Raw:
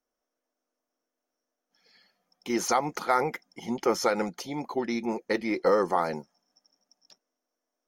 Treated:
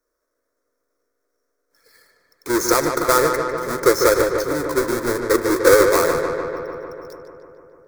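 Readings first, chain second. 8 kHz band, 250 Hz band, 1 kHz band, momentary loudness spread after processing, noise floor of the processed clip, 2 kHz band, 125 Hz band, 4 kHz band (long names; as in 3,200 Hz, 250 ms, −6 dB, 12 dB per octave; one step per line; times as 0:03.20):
+13.0 dB, +8.0 dB, +7.0 dB, 15 LU, −75 dBFS, +12.5 dB, +10.0 dB, +10.5 dB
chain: each half-wave held at its own peak
phaser with its sweep stopped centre 780 Hz, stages 6
feedback echo with a low-pass in the loop 149 ms, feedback 75%, low-pass 3,800 Hz, level −6 dB
level +7.5 dB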